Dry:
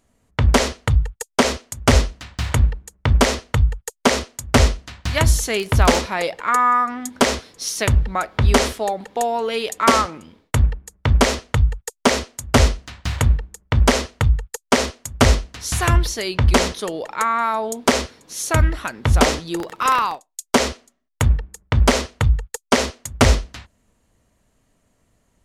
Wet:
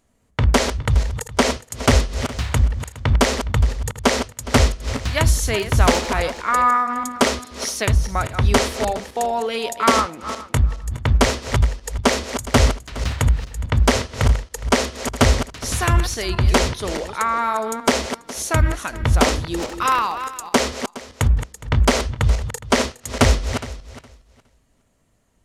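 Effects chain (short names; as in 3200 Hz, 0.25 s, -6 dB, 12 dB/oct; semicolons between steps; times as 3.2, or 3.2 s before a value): regenerating reverse delay 0.207 s, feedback 42%, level -10 dB; gain -1 dB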